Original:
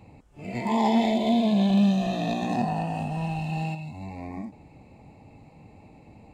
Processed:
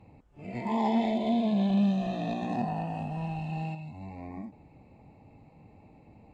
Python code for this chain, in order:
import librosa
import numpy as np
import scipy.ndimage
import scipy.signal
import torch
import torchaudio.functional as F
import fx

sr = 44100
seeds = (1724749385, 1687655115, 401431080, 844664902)

y = fx.lowpass(x, sr, hz=2700.0, slope=6)
y = y * librosa.db_to_amplitude(-4.5)